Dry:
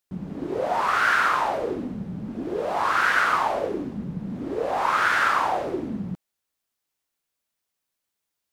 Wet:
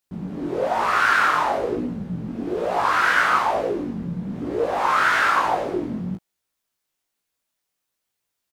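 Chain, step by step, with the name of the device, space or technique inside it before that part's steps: double-tracked vocal (doubler 17 ms -8 dB; chorus 1.1 Hz, delay 16.5 ms, depth 7.4 ms); gain +5 dB

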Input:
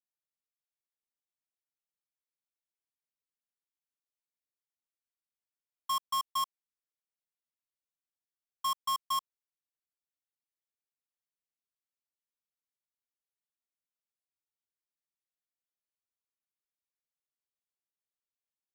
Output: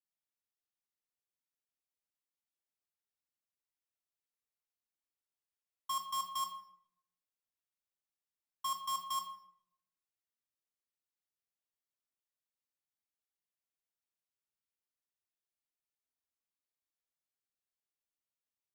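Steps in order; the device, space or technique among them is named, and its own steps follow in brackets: bathroom (reverb RT60 0.75 s, pre-delay 15 ms, DRR 4 dB); gain -5 dB

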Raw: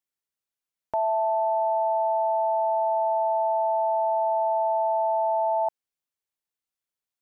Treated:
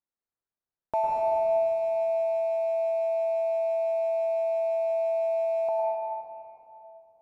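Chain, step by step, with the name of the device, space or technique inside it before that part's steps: Wiener smoothing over 15 samples; reverb removal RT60 1.5 s; stairwell (reverb RT60 3.0 s, pre-delay 0.1 s, DRR -3 dB); 4.9–5.45 bell 61 Hz +14 dB 1.8 oct

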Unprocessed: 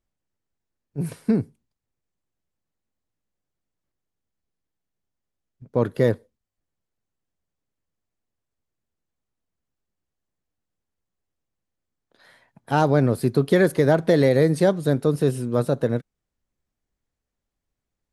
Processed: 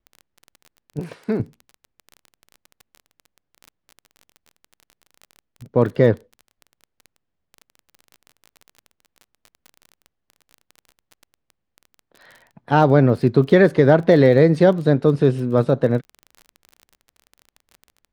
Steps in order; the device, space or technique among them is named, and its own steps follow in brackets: lo-fi chain (LPF 3700 Hz 12 dB/oct; wow and flutter; crackle 24/s -35 dBFS); 0.99–1.4 tone controls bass -14 dB, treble +1 dB; gain +4.5 dB

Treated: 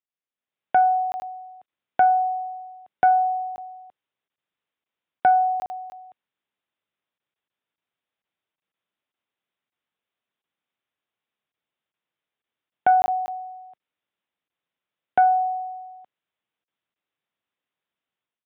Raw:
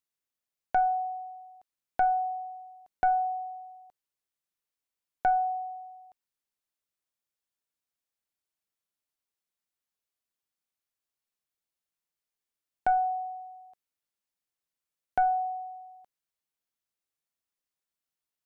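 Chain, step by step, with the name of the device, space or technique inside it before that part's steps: call with lost packets (HPF 110 Hz 12 dB/oct; downsampling 8000 Hz; AGC gain up to 12 dB; packet loss); gain -4 dB

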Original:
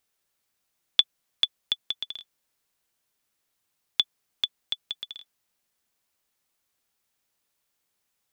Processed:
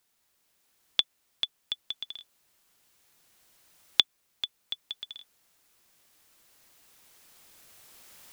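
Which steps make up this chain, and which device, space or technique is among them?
cheap recorder with automatic gain (white noise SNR 31 dB; recorder AGC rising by 5.4 dB/s); gain -7 dB

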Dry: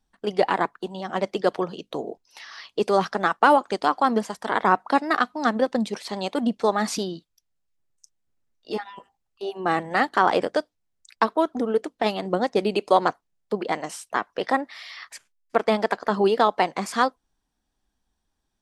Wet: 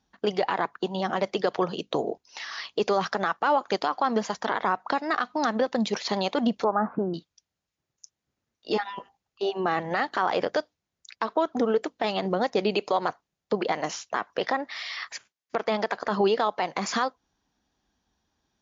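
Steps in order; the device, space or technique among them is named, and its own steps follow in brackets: 6.64–7.14 Chebyshev low-pass 1500 Hz, order 5; dynamic EQ 270 Hz, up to -5 dB, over -33 dBFS, Q 1; podcast mastering chain (HPF 69 Hz; compressor 3:1, threshold -23 dBFS, peak gain reduction 9 dB; limiter -18.5 dBFS, peak gain reduction 10 dB; gain +5.5 dB; MP3 96 kbps 16000 Hz)

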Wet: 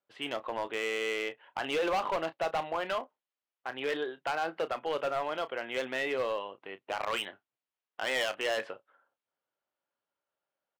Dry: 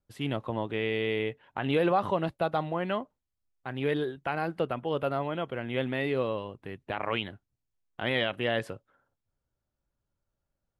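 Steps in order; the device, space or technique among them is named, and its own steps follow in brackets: 6.57–7.02 notch 1700 Hz, Q 8.5; megaphone (BPF 550–3100 Hz; bell 3000 Hz +4 dB 0.25 oct; hard clip -28.5 dBFS, distortion -10 dB; doubler 31 ms -13 dB); gain +2.5 dB

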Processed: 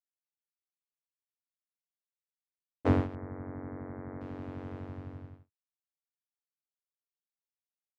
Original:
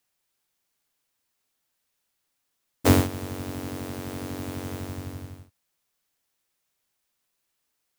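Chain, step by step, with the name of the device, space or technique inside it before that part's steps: hearing-loss simulation (LPF 1700 Hz 12 dB/oct; expander -38 dBFS); 3.15–4.21 steep low-pass 2200 Hz 96 dB/oct; gain -7 dB

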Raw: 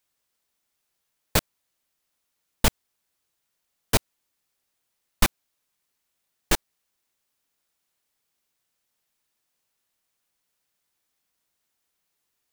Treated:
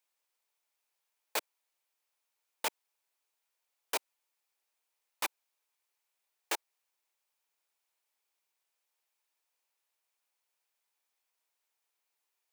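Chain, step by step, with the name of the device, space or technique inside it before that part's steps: laptop speaker (HPF 380 Hz 24 dB/oct; bell 900 Hz +5.5 dB 0.4 oct; bell 2400 Hz +4.5 dB 0.3 oct; limiter -14 dBFS, peak gain reduction 7 dB); gain -6.5 dB

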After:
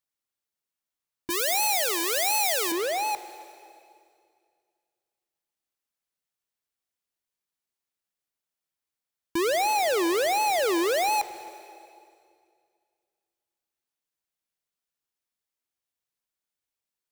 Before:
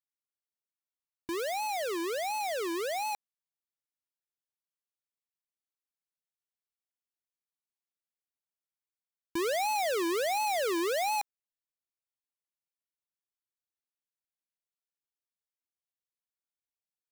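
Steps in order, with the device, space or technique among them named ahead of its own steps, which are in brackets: 1.3–2.72 tilt +3.5 dB/oct; saturated reverb return (on a send at -13.5 dB: reverb RT60 2.2 s, pre-delay 0.105 s + soft clip -26 dBFS, distortion -15 dB); on the sum: gain +5.5 dB

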